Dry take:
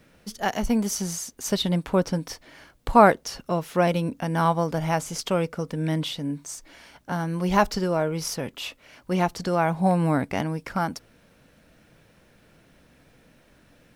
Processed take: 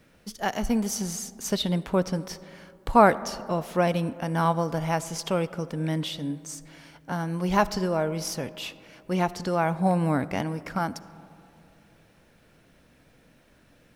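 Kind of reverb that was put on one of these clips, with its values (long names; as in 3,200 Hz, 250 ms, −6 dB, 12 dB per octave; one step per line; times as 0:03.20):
comb and all-pass reverb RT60 2.8 s, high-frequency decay 0.3×, pre-delay 25 ms, DRR 17 dB
level −2 dB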